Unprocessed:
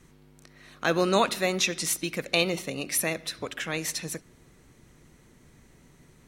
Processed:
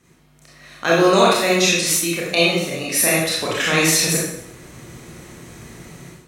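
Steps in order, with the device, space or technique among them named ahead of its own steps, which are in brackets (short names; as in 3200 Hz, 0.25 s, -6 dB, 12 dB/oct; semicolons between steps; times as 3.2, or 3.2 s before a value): far laptop microphone (reverb RT60 0.65 s, pre-delay 25 ms, DRR -5 dB; HPF 120 Hz 6 dB/oct; AGC gain up to 14 dB); gain -1 dB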